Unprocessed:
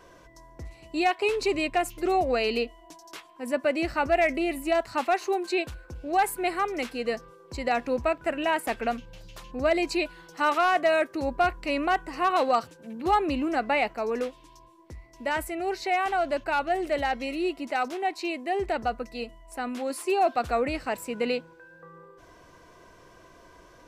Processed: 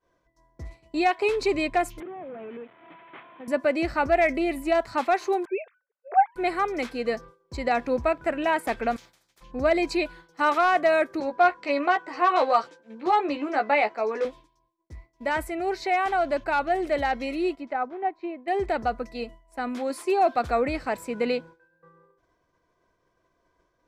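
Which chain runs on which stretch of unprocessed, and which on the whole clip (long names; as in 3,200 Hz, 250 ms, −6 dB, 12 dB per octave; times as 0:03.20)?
0:02.00–0:03.48: linear delta modulator 16 kbit/s, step −39 dBFS + high-pass filter 130 Hz 24 dB per octave + downward compressor 12 to 1, threshold −37 dBFS
0:05.45–0:06.36: three sine waves on the formant tracks + linear-phase brick-wall high-pass 350 Hz
0:08.96–0:09.41: high-pass filter 75 Hz + every bin compressed towards the loudest bin 10 to 1
0:11.20–0:14.25: band-pass filter 350–6,100 Hz + double-tracking delay 14 ms −5 dB
0:17.55–0:18.48: treble cut that deepens with the level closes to 1,400 Hz, closed at −27 dBFS + expander for the loud parts, over −44 dBFS
whole clip: high-shelf EQ 6,800 Hz −8.5 dB; notch filter 2,800 Hz, Q 10; downward expander −40 dBFS; level +2 dB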